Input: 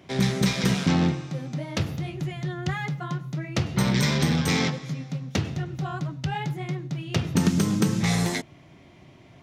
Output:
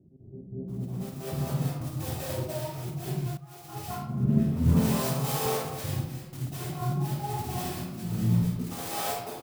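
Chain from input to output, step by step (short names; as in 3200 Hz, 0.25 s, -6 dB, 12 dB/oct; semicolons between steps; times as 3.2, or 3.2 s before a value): elliptic low-pass 1300 Hz; notches 50/100/150/200/250/300/350 Hz; compressor 1.5:1, threshold -35 dBFS, peak gain reduction 6.5 dB; auto swell 0.301 s; step gate "x.xxx..xx.xx.x" 93 bpm; modulation noise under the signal 10 dB; doubler 50 ms -6.5 dB; bands offset in time lows, highs 0.68 s, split 360 Hz; reverb RT60 0.85 s, pre-delay 0.189 s, DRR -9.5 dB; 3.37–5.46 three-band expander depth 70%; gain -2 dB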